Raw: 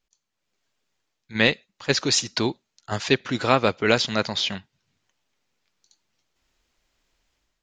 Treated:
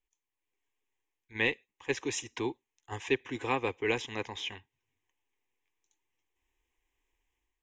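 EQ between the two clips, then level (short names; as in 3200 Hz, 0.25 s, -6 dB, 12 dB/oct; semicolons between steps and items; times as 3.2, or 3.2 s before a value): fixed phaser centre 920 Hz, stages 8; -7.0 dB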